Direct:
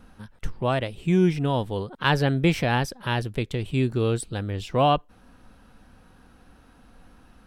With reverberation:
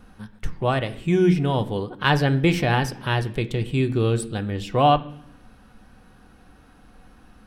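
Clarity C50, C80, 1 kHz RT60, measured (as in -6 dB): 15.5 dB, 18.5 dB, 0.70 s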